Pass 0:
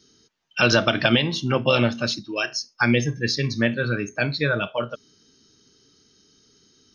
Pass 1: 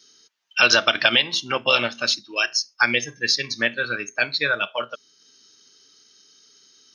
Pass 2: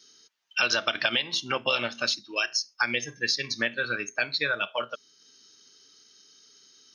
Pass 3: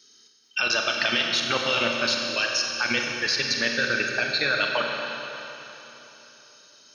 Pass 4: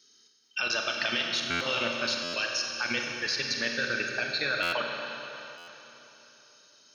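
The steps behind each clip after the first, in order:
HPF 1400 Hz 6 dB/oct; transient shaper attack 0 dB, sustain -4 dB; gain +6 dB
compressor 2.5:1, threshold -22 dBFS, peak gain reduction 8 dB; gain -2 dB
level quantiser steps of 16 dB; Schroeder reverb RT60 3.5 s, combs from 30 ms, DRR 1 dB; gain +7.5 dB
stuck buffer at 1.5/2.23/4.62/5.57, samples 512, times 8; gain -5.5 dB

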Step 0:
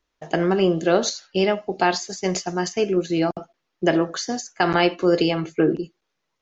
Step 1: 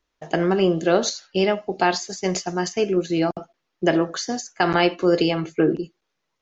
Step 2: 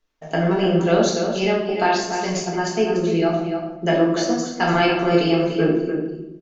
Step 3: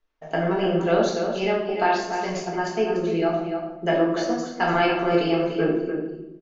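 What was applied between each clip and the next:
nothing audible
outdoor echo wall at 50 m, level -7 dB; shoebox room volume 270 m³, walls mixed, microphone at 1.6 m; gain -4 dB
LPF 2100 Hz 6 dB/oct; bell 150 Hz -6.5 dB 2.7 oct

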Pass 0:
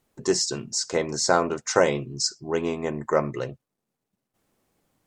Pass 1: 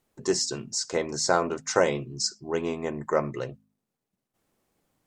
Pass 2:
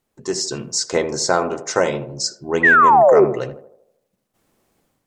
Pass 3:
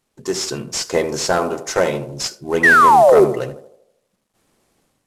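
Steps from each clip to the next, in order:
de-hum 51.93 Hz, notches 5; gain -2.5 dB
AGC gain up to 9 dB; painted sound fall, 2.63–3.25, 350–2000 Hz -11 dBFS; narrowing echo 79 ms, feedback 54%, band-pass 590 Hz, level -10 dB
CVSD 64 kbps; gain +1.5 dB

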